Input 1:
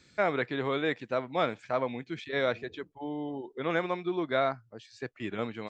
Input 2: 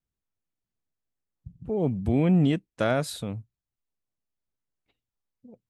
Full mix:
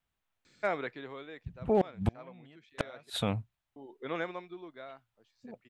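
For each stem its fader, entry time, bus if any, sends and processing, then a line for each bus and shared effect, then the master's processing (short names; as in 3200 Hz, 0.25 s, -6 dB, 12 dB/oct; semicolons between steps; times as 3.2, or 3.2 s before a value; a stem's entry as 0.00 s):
-3.0 dB, 0.45 s, muted 3.1–3.76, no send, low shelf 95 Hz -11.5 dB; auto duck -17 dB, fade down 0.80 s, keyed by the second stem
+1.0 dB, 0.00 s, no send, band shelf 1500 Hz +9.5 dB 2.9 oct; flipped gate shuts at -16 dBFS, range -36 dB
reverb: off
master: overloaded stage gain 18 dB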